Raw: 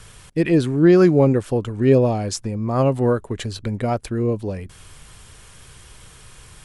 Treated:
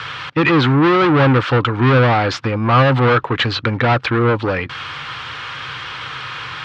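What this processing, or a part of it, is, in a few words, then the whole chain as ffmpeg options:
overdrive pedal into a guitar cabinet: -filter_complex "[0:a]asplit=2[link_01][link_02];[link_02]highpass=frequency=720:poles=1,volume=30dB,asoftclip=type=tanh:threshold=-3.5dB[link_03];[link_01][link_03]amix=inputs=2:normalize=0,lowpass=frequency=4100:poles=1,volume=-6dB,highpass=83,equalizer=frequency=130:width_type=q:width=4:gain=6,equalizer=frequency=200:width_type=q:width=4:gain=-10,equalizer=frequency=400:width_type=q:width=4:gain=-9,equalizer=frequency=640:width_type=q:width=4:gain=-9,equalizer=frequency=1300:width_type=q:width=4:gain=5,lowpass=frequency=4000:width=0.5412,lowpass=frequency=4000:width=1.3066"

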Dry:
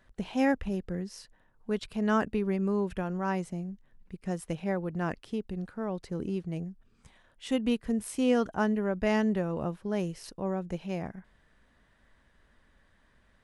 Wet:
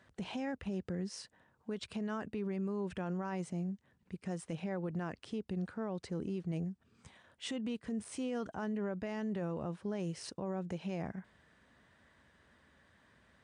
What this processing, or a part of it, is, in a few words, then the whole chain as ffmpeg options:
podcast mastering chain: -af "highpass=frequency=72:width=0.5412,highpass=frequency=72:width=1.3066,deesser=0.9,acompressor=threshold=-34dB:ratio=2.5,alimiter=level_in=8dB:limit=-24dB:level=0:latency=1:release=28,volume=-8dB,volume=1.5dB" -ar 22050 -c:a libmp3lame -b:a 96k

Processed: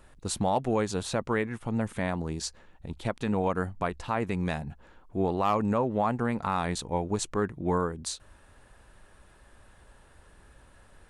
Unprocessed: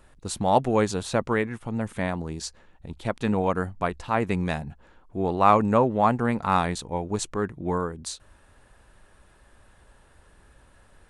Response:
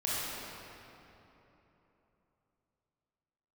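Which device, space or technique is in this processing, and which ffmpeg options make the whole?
clipper into limiter: -af "asoftclip=type=hard:threshold=-8.5dB,alimiter=limit=-16.5dB:level=0:latency=1:release=224"

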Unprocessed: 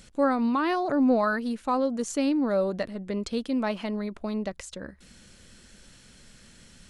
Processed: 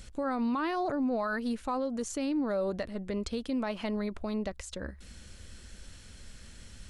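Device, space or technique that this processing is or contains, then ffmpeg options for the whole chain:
car stereo with a boomy subwoofer: -af "lowshelf=frequency=110:width_type=q:width=1.5:gain=7.5,alimiter=limit=-24dB:level=0:latency=1:release=154"

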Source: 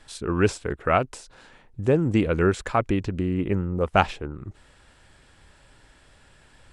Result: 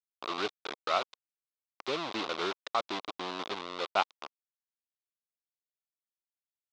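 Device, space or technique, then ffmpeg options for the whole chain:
hand-held game console: -af "acrusher=bits=3:mix=0:aa=0.000001,highpass=480,equalizer=frequency=490:width_type=q:width=4:gain=-4,equalizer=frequency=1100:width_type=q:width=4:gain=5,equalizer=frequency=1700:width_type=q:width=4:gain=-7,equalizer=frequency=3700:width_type=q:width=4:gain=7,lowpass=frequency=5000:width=0.5412,lowpass=frequency=5000:width=1.3066,volume=-8dB"

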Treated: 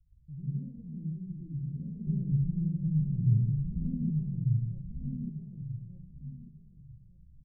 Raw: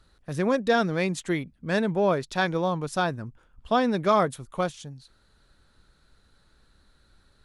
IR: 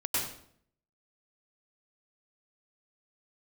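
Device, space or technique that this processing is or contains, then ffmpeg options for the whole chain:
club heard from the street: -filter_complex "[0:a]alimiter=limit=-18.5dB:level=0:latency=1,lowpass=frequency=140:width=0.5412,lowpass=frequency=140:width=1.3066[link_01];[1:a]atrim=start_sample=2205[link_02];[link_01][link_02]afir=irnorm=-1:irlink=0,asettb=1/sr,asplit=3[link_03][link_04][link_05];[link_03]atrim=end=2.074[link_06];[link_04]atrim=start=2.07:end=4.1,asetpts=PTS-STARTPTS,afade=type=in:duration=0.004:curve=qsin,afade=type=out:start_time=2.026:duration=0.004:curve=qsin,lowshelf=frequency=320:gain=11[link_07];[link_05]atrim=start=4.096[link_08];[link_06][link_07]acrossfade=duration=0.004:curve1=hsin:curve2=qsin[link_09];[link_09][link_08]acrossfade=duration=0.004:curve1=qsin:curve2=hsin,aecho=1:1:1193|2386|3579:0.631|0.126|0.0252,volume=-4dB"

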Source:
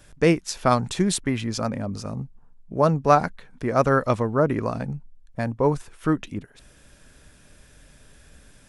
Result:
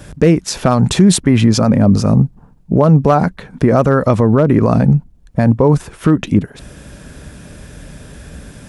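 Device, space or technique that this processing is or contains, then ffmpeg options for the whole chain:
mastering chain: -af "highpass=43,equalizer=frequency=180:width_type=o:width=0.58:gain=3.5,acompressor=threshold=-22dB:ratio=2,tiltshelf=frequency=910:gain=4,asoftclip=type=hard:threshold=-11dB,alimiter=level_in=17dB:limit=-1dB:release=50:level=0:latency=1,volume=-1dB"

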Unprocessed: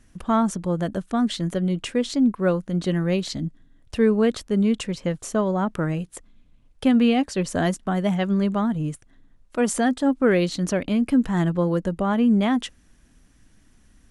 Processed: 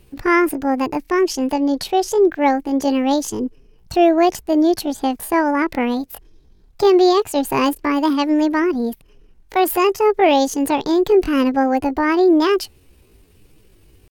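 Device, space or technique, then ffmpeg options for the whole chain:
chipmunk voice: -filter_complex "[0:a]asettb=1/sr,asplit=3[link_01][link_02][link_03];[link_01]atrim=end=1.064[link_04];[link_02]atrim=start=1.06:end=2.13,asetpts=PTS-STARTPTS,afade=type=in:duration=0.004:curve=qsin,afade=type=out:start_time=1.066:duration=0.004:curve=qsin,lowpass=7300[link_05];[link_03]atrim=start=2.126[link_06];[link_04][link_05]acrossfade=duration=0.004:curve1=hsin:curve2=qsin[link_07];[link_07][link_06]acrossfade=duration=0.004:curve1=qsin:curve2=hsin,asetrate=68011,aresample=44100,atempo=0.64842,volume=5dB"

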